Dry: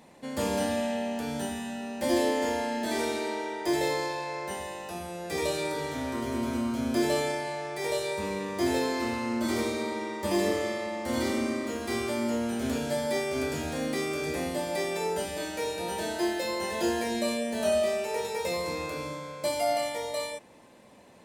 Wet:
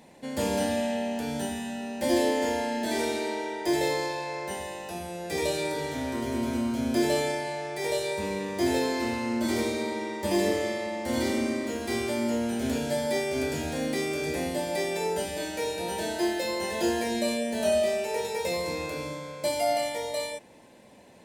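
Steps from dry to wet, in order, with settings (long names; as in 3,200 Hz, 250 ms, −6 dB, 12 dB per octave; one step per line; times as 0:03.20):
parametric band 1,200 Hz −8.5 dB 0.31 octaves
level +1.5 dB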